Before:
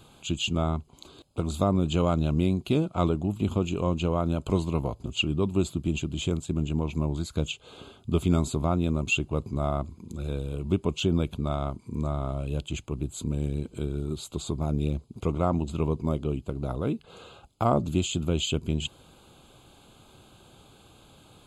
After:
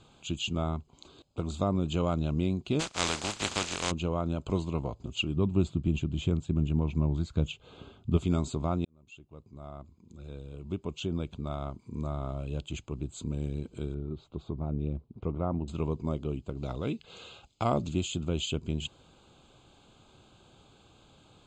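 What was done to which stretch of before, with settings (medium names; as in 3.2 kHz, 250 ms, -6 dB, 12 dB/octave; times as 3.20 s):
2.79–3.90 s: spectral contrast reduction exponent 0.2
5.36–8.17 s: tone controls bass +6 dB, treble -7 dB
8.85–12.24 s: fade in
13.94–15.68 s: tape spacing loss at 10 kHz 37 dB
16.57–17.93 s: high-order bell 3.9 kHz +8 dB 2.3 oct
whole clip: steep low-pass 7.8 kHz 36 dB/octave; trim -4.5 dB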